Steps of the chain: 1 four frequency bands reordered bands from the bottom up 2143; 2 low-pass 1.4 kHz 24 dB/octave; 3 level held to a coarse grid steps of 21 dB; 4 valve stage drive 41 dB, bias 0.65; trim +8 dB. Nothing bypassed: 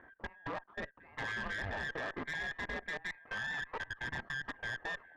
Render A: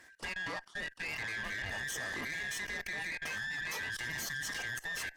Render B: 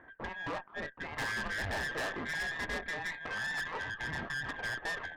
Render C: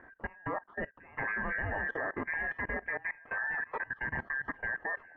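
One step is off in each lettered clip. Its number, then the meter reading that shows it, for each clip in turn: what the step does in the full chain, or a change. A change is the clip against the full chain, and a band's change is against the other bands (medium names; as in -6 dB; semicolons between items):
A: 2, 8 kHz band +18.0 dB; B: 3, crest factor change -3.5 dB; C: 4, crest factor change +3.0 dB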